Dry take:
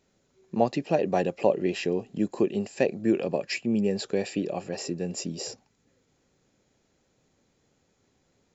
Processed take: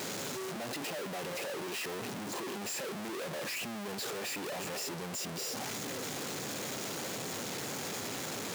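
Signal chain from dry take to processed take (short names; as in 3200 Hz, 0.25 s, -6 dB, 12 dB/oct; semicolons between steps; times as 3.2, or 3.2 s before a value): infinite clipping; HPF 100 Hz 24 dB/oct; low shelf 210 Hz -7 dB; gain -7.5 dB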